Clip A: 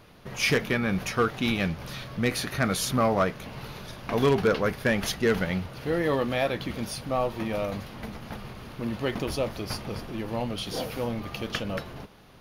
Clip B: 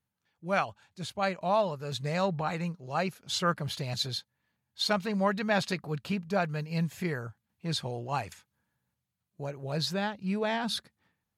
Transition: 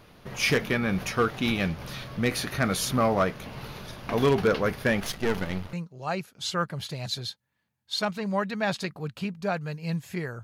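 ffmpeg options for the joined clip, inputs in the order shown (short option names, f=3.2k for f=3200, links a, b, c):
-filter_complex "[0:a]asettb=1/sr,asplit=3[a][b][c];[a]atrim=end=5.004[d];[b]atrim=start=5:end=5.73,asetpts=PTS-STARTPTS,afade=t=in:d=0.004:c=qsin,afade=t=out:st=0.726:d=0.004:c=qsin,aeval=exprs='if(lt(val(0),0),0.251*val(0),val(0))':c=same[e];[c]atrim=start=5.726[f];[d][e]acrossfade=d=0.004:c1=hsin:c2=qsin[g];[g][f]acrossfade=d=0.004:c1=qsin:c2=hsin,apad=whole_dur=10.43,atrim=end=10.43,atrim=end=5.732[h];[1:a]atrim=start=2.608:end=7.31[i];[h][i]acrossfade=d=0.004:c1=hsin:c2=hsin"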